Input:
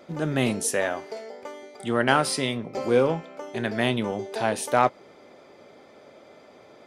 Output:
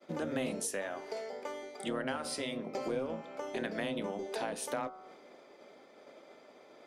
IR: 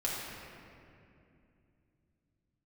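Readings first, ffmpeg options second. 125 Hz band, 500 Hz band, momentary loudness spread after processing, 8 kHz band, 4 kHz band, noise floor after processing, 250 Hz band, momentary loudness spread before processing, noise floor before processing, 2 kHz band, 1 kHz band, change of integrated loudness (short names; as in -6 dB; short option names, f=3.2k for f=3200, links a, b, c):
-16.5 dB, -11.5 dB, 21 LU, -10.0 dB, -11.5 dB, -58 dBFS, -11.0 dB, 15 LU, -52 dBFS, -13.0 dB, -14.5 dB, -12.5 dB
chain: -filter_complex "[0:a]bandreject=f=74.76:t=h:w=4,bandreject=f=149.52:t=h:w=4,bandreject=f=224.28:t=h:w=4,bandreject=f=299.04:t=h:w=4,bandreject=f=373.8:t=h:w=4,bandreject=f=448.56:t=h:w=4,bandreject=f=523.32:t=h:w=4,bandreject=f=598.08:t=h:w=4,bandreject=f=672.84:t=h:w=4,bandreject=f=747.6:t=h:w=4,bandreject=f=822.36:t=h:w=4,bandreject=f=897.12:t=h:w=4,bandreject=f=971.88:t=h:w=4,bandreject=f=1.04664k:t=h:w=4,bandreject=f=1.1214k:t=h:w=4,bandreject=f=1.19616k:t=h:w=4,bandreject=f=1.27092k:t=h:w=4,bandreject=f=1.34568k:t=h:w=4,bandreject=f=1.42044k:t=h:w=4,bandreject=f=1.4952k:t=h:w=4,agate=range=-33dB:threshold=-46dB:ratio=3:detection=peak,acrossover=split=170[a][b];[a]aeval=exprs='val(0)*sin(2*PI*390*n/s)':c=same[c];[b]acompressor=threshold=-32dB:ratio=10[d];[c][d]amix=inputs=2:normalize=0,volume=-1.5dB"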